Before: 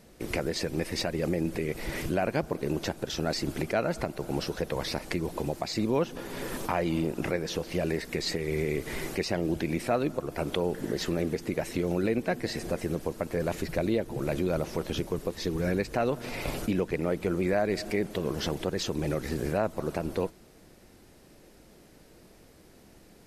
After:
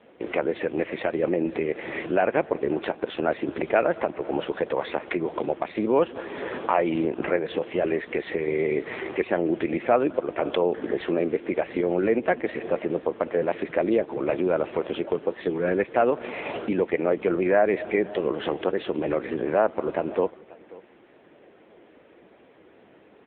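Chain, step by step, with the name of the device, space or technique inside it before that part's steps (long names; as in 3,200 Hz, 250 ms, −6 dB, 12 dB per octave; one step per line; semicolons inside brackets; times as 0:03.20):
satellite phone (band-pass filter 330–3,000 Hz; single-tap delay 538 ms −21 dB; level +8.5 dB; AMR narrowband 6.7 kbit/s 8,000 Hz)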